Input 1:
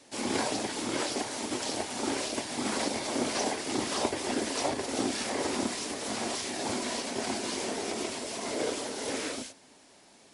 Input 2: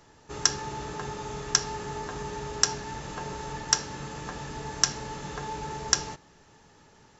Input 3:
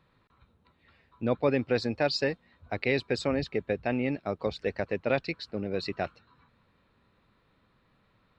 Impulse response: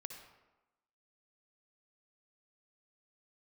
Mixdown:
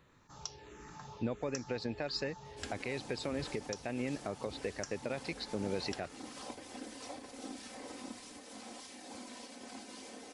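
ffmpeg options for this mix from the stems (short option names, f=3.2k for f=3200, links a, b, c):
-filter_complex "[0:a]aecho=1:1:3.9:0.65,adelay=2450,volume=-17.5dB[a];[1:a]asplit=2[b][c];[c]afreqshift=-1.5[d];[b][d]amix=inputs=2:normalize=1,volume=-12dB[e];[2:a]acompressor=threshold=-29dB:ratio=6,volume=0.5dB[f];[a][e][f]amix=inputs=3:normalize=0,alimiter=level_in=0.5dB:limit=-24dB:level=0:latency=1:release=268,volume=-0.5dB"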